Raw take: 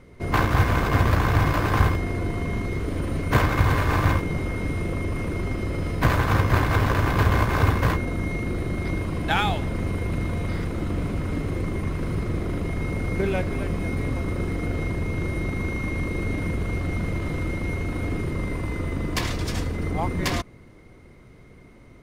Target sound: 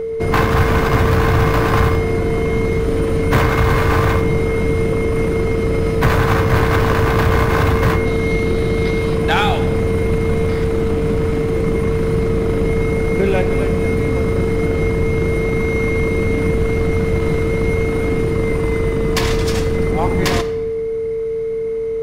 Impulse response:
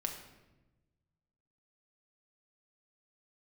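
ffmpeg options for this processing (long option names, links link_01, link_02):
-filter_complex "[0:a]asettb=1/sr,asplit=3[link_01][link_02][link_03];[link_01]atrim=end=8.054[link_04];[link_02]atrim=start=8.05:end=9.15,asetpts=PTS-STARTPTS,afade=type=in:duration=0.004:curve=qsin,afade=type=out:start_time=1.096:duration=0.004:curve=qsin,equalizer=frequency=3900:width=1.6:gain=7[link_05];[link_03]atrim=start=9.146[link_06];[link_04][link_05]acrossfade=duration=0.004:curve1=hsin:curve2=qsin[link_07];[link_07][link_06]acrossfade=duration=0.004:curve1=qsin:curve2=hsin,asplit=2[link_08][link_09];[link_09]acompressor=threshold=-30dB:ratio=6,volume=-1dB[link_10];[link_08][link_10]amix=inputs=2:normalize=0,asettb=1/sr,asplit=3[link_11][link_12][link_13];[link_11]atrim=end=10.454[link_14];[link_12]atrim=start=10.45:end=11.53,asetpts=PTS-STARTPTS,afade=type=in:duration=0.004:curve=qsin,afade=type=out:start_time=1.076:duration=0.004:curve=qsin,volume=19.5dB,asoftclip=hard,volume=-19.5dB[link_15];[link_13]atrim=start=11.526[link_16];[link_14][link_15]acrossfade=duration=0.004:curve1=hsin:curve2=qsin[link_17];[link_17][link_16]acrossfade=duration=0.004:curve1=qsin:curve2=hsin,aeval=exprs='val(0)+0.0631*sin(2*PI*450*n/s)':channel_layout=same,asoftclip=type=tanh:threshold=-10.5dB,asplit=2[link_18][link_19];[1:a]atrim=start_sample=2205[link_20];[link_19][link_20]afir=irnorm=-1:irlink=0,volume=-0.5dB[link_21];[link_18][link_21]amix=inputs=2:normalize=0"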